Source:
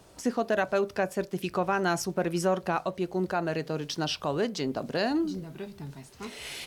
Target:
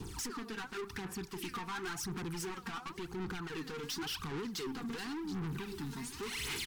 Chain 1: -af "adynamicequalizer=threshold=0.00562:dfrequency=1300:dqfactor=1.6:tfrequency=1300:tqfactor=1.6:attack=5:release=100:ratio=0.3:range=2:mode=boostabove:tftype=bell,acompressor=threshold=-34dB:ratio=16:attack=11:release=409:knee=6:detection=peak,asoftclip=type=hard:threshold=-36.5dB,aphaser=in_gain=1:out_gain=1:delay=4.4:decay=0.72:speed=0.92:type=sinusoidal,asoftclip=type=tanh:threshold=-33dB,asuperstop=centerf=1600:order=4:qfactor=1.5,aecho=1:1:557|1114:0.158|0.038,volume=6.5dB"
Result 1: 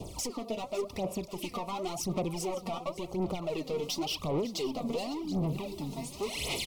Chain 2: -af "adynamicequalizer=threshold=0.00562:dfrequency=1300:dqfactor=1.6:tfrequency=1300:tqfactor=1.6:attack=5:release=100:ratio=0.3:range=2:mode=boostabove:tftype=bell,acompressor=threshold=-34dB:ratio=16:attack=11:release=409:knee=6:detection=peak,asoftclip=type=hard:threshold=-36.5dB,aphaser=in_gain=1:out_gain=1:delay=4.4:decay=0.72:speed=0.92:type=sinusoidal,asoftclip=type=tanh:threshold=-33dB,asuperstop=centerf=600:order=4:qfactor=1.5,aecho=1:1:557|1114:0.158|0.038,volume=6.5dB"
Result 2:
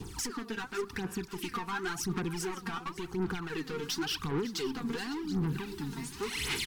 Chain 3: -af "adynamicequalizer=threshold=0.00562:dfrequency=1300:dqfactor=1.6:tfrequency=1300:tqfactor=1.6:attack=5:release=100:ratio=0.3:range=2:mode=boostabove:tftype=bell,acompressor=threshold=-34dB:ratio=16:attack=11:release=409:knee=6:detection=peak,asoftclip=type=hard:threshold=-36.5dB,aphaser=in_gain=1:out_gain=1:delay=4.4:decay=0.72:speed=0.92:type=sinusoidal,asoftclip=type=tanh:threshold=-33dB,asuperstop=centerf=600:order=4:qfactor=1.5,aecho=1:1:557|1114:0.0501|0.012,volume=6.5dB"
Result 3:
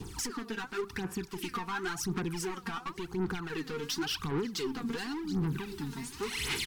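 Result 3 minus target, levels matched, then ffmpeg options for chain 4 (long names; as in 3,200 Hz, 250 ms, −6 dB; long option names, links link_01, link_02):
soft clipping: distortion −7 dB
-af "adynamicequalizer=threshold=0.00562:dfrequency=1300:dqfactor=1.6:tfrequency=1300:tqfactor=1.6:attack=5:release=100:ratio=0.3:range=2:mode=boostabove:tftype=bell,acompressor=threshold=-34dB:ratio=16:attack=11:release=409:knee=6:detection=peak,asoftclip=type=hard:threshold=-36.5dB,aphaser=in_gain=1:out_gain=1:delay=4.4:decay=0.72:speed=0.92:type=sinusoidal,asoftclip=type=tanh:threshold=-42.5dB,asuperstop=centerf=600:order=4:qfactor=1.5,aecho=1:1:557|1114:0.0501|0.012,volume=6.5dB"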